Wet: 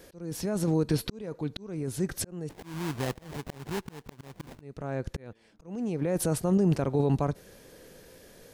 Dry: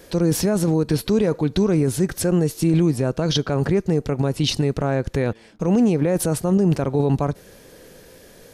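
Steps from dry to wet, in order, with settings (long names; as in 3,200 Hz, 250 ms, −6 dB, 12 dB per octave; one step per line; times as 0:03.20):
0:02.49–0:04.61: sample-rate reduction 1,300 Hz, jitter 20%
volume swells 652 ms
level −6 dB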